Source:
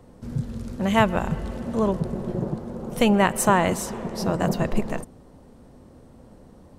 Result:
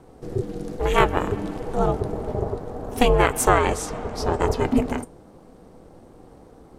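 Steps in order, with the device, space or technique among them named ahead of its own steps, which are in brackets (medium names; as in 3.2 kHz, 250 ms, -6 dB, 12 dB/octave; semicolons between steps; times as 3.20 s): 3.49–4.60 s: low-pass 9.8 kHz 12 dB/octave; alien voice (ring modulator 250 Hz; flange 0.31 Hz, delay 2 ms, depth 5.5 ms, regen -80%); trim +8.5 dB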